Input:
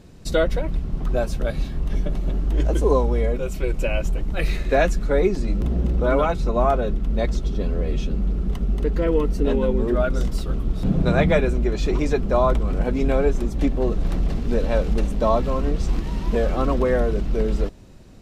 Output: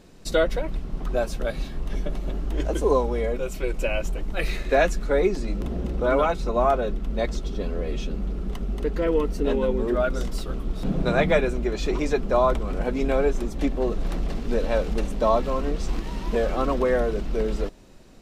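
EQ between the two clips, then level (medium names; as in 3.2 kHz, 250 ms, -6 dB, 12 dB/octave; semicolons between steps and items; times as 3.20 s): peaking EQ 87 Hz -10.5 dB 2.2 oct; 0.0 dB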